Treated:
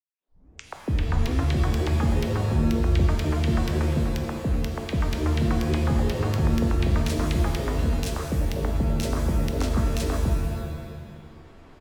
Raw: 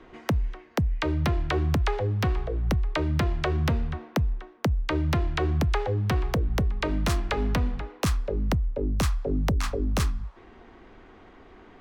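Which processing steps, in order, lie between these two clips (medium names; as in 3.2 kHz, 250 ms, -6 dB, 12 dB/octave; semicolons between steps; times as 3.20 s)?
tape start-up on the opening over 1.27 s; three bands offset in time highs, mids, lows 130/280 ms, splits 630/1900 Hz; pitch-shifted reverb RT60 1.3 s, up +7 st, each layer -2 dB, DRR 5 dB; trim -1.5 dB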